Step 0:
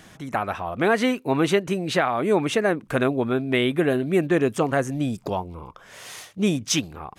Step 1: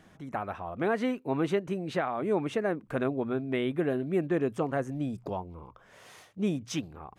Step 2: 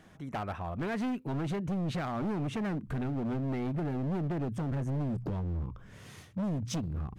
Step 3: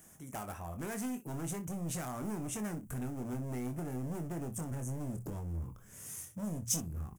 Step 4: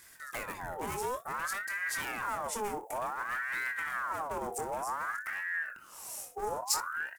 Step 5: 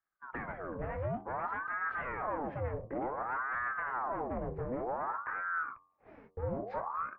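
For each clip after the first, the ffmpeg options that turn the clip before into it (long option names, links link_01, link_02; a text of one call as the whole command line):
ffmpeg -i in.wav -af "highshelf=frequency=2200:gain=-10.5,bandreject=frequency=60:width_type=h:width=6,bandreject=frequency=120:width_type=h:width=6,volume=-7dB" out.wav
ffmpeg -i in.wav -af "asubboost=boost=9.5:cutoff=210,acompressor=threshold=-23dB:ratio=20,asoftclip=type=hard:threshold=-30dB" out.wav
ffmpeg -i in.wav -filter_complex "[0:a]aexciter=amount=15.2:drive=4.8:freq=6200,asplit=2[link_01][link_02];[link_02]aecho=0:1:24|61:0.422|0.158[link_03];[link_01][link_03]amix=inputs=2:normalize=0,volume=-7dB" out.wav
ffmpeg -i in.wav -af "aeval=exprs='val(0)*sin(2*PI*1200*n/s+1200*0.5/0.55*sin(2*PI*0.55*n/s))':channel_layout=same,volume=5.5dB" out.wav
ffmpeg -i in.wav -af "agate=range=-30dB:threshold=-44dB:ratio=16:detection=peak,bandreject=frequency=88.9:width_type=h:width=4,bandreject=frequency=177.8:width_type=h:width=4,bandreject=frequency=266.7:width_type=h:width=4,bandreject=frequency=355.6:width_type=h:width=4,bandreject=frequency=444.5:width_type=h:width=4,bandreject=frequency=533.4:width_type=h:width=4,bandreject=frequency=622.3:width_type=h:width=4,bandreject=frequency=711.2:width_type=h:width=4,bandreject=frequency=800.1:width_type=h:width=4,bandreject=frequency=889:width_type=h:width=4,bandreject=frequency=977.9:width_type=h:width=4,bandreject=frequency=1066.8:width_type=h:width=4,bandreject=frequency=1155.7:width_type=h:width=4,bandreject=frequency=1244.6:width_type=h:width=4,bandreject=frequency=1333.5:width_type=h:width=4,bandreject=frequency=1422.4:width_type=h:width=4,bandreject=frequency=1511.3:width_type=h:width=4,highpass=frequency=160:width_type=q:width=0.5412,highpass=frequency=160:width_type=q:width=1.307,lowpass=frequency=2400:width_type=q:width=0.5176,lowpass=frequency=2400:width_type=q:width=0.7071,lowpass=frequency=2400:width_type=q:width=1.932,afreqshift=-330" out.wav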